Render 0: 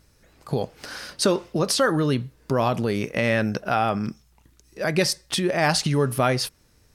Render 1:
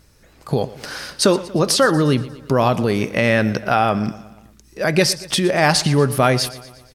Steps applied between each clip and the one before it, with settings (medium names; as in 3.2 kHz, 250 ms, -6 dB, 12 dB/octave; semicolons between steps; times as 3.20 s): feedback delay 118 ms, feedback 54%, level -17.5 dB; trim +5.5 dB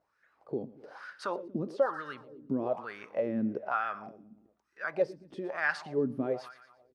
wah-wah 1.1 Hz 240–1600 Hz, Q 4.3; trim -5.5 dB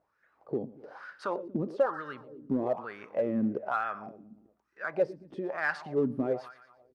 treble shelf 2.4 kHz -9.5 dB; in parallel at -9 dB: hard clipper -27 dBFS, distortion -11 dB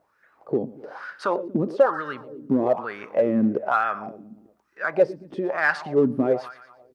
bass shelf 88 Hz -7.5 dB; trim +9 dB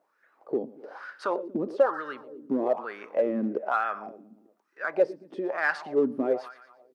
Chebyshev high-pass 300 Hz, order 2; trim -4 dB